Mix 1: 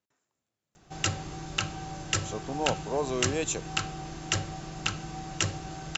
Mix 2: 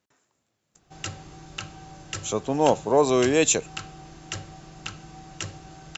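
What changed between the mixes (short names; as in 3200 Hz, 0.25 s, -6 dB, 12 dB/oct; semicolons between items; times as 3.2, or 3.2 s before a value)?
speech +10.5 dB; background -5.5 dB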